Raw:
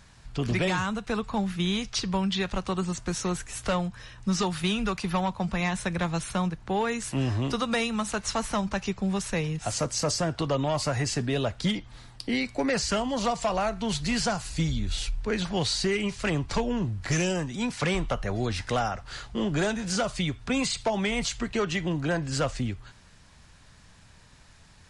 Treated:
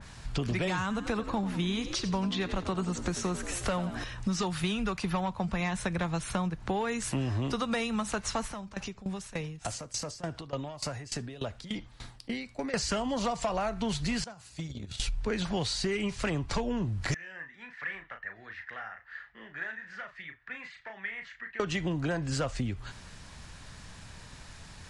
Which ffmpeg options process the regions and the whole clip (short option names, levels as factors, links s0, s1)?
-filter_complex "[0:a]asettb=1/sr,asplit=3[s0][s1][s2];[s0]atrim=end=0.814[s3];[s1]atrim=start=0.81:end=4.04,asetpts=PTS-STARTPTS,afade=t=in:d=0.004:c=qsin,afade=t=out:st=3.226:d=0.004:c=qsin,acompressor=mode=upward:threshold=0.0251:ratio=2.5:attack=3.2:release=140:knee=2.83:detection=peak,asplit=7[s4][s5][s6][s7][s8][s9][s10];[s5]adelay=89,afreqshift=56,volume=0.211[s11];[s6]adelay=178,afreqshift=112,volume=0.116[s12];[s7]adelay=267,afreqshift=168,volume=0.0638[s13];[s8]adelay=356,afreqshift=224,volume=0.0351[s14];[s9]adelay=445,afreqshift=280,volume=0.0193[s15];[s10]adelay=534,afreqshift=336,volume=0.0106[s16];[s4][s11][s12][s13][s14][s15][s16]amix=inputs=7:normalize=0,atrim=end_sample=142443[s17];[s2]atrim=start=4.036[s18];[s3][s17]acrossfade=d=0.004:c1=hsin:c2=qsin[s19];[s19][s18]acrossfade=d=0.004:c1=qsin:c2=hsin,asettb=1/sr,asplit=3[s20][s21][s22];[s20]atrim=end=8.474[s23];[s21]atrim=start=8.47:end=12.74,asetpts=PTS-STARTPTS,afade=t=in:d=0.004:c=qsin,afade=t=out:st=4.266:d=0.004:c=qsin,acompressor=threshold=0.0158:ratio=3:attack=3.2:release=140:knee=1:detection=peak,aecho=1:1:71:0.0708,atrim=end_sample=188307,aeval=exprs='val(0)*pow(10,-19*if(lt(mod(3.4*n/s,1),2*abs(3.4)/1000),1-mod(3.4*n/s,1)/(2*abs(3.4)/1000),(mod(3.4*n/s,1)-2*abs(3.4)/1000)/(1-2*abs(3.4)/1000))/20)':c=same[s24];[s22]atrim=start=12.736[s25];[s23][s24]acrossfade=d=0.004:c1=hsin:c2=qsin[s26];[s26][s25]acrossfade=d=0.004:c1=qsin:c2=hsin,asettb=1/sr,asplit=3[s27][s28][s29];[s27]atrim=end=14.244[s30];[s28]atrim=start=14.24:end=15,asetpts=PTS-STARTPTS,afade=t=in:d=0.004:c=qsin,afade=t=out:st=0.756:d=0.004:c=qsin,agate=range=0.112:threshold=0.0501:ratio=16:release=100:detection=peak,highpass=f=70:w=0.5412,highpass=f=70:w=1.3066,acompressor=threshold=0.00891:ratio=6:attack=3.2:release=140:knee=1:detection=peak[s31];[s29]atrim=start=14.996[s32];[s30][s31]acrossfade=d=0.004:c1=hsin:c2=qsin[s33];[s33][s32]acrossfade=d=0.004:c1=qsin:c2=hsin,asettb=1/sr,asplit=3[s34][s35][s36];[s34]atrim=end=17.144[s37];[s35]atrim=start=17.14:end=21.6,asetpts=PTS-STARTPTS,afade=t=in:d=0.004:c=qsin,afade=t=out:st=4.456:d=0.004:c=qsin,bandpass=f=1800:t=q:w=11,aemphasis=mode=reproduction:type=bsi,asplit=2[s38][s39];[s39]adelay=36,volume=0.447[s40];[s38][s40]amix=inputs=2:normalize=0,atrim=end_sample=196686[s41];[s36]atrim=start=21.596[s42];[s37][s41]acrossfade=d=0.004:c1=hsin:c2=qsin[s43];[s43][s42]acrossfade=d=0.004:c1=qsin:c2=hsin,acompressor=threshold=0.0158:ratio=4,adynamicequalizer=threshold=0.00251:dfrequency=2700:dqfactor=0.7:tfrequency=2700:tqfactor=0.7:attack=5:release=100:ratio=0.375:range=1.5:mode=cutabove:tftype=highshelf,volume=2.11"